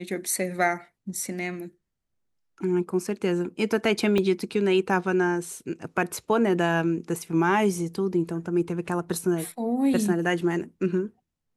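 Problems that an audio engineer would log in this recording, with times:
4.18 s: dropout 2.7 ms

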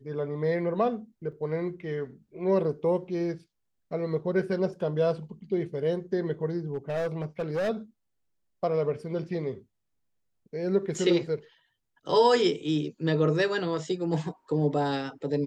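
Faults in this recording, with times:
1.32 s: dropout 3.8 ms
6.74–7.70 s: clipped -25 dBFS

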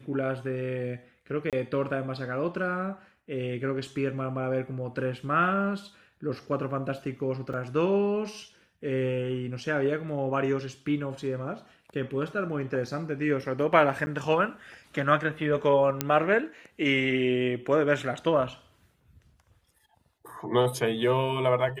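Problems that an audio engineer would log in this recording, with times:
1.50–1.53 s: dropout 27 ms
7.53–7.54 s: dropout 5.4 ms
14.06–14.07 s: dropout 10 ms
16.01 s: pop -8 dBFS

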